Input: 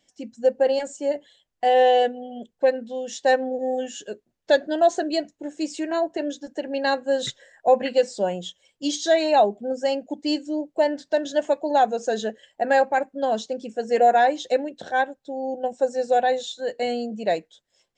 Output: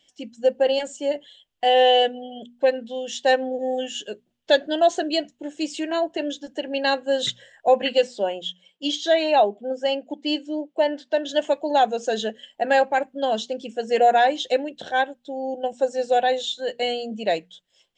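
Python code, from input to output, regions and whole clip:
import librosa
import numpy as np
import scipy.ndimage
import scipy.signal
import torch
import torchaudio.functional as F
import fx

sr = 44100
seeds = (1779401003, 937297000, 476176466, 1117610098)

y = fx.chain(x, sr, fx.highpass(hz=240.0, slope=12),
    fx.high_shelf(hz=5400.0, db=-12.0), at=(8.07, 11.29))
y = fx.peak_eq(y, sr, hz=3100.0, db=11.0, octaves=0.54)
y = fx.hum_notches(y, sr, base_hz=60, count=4)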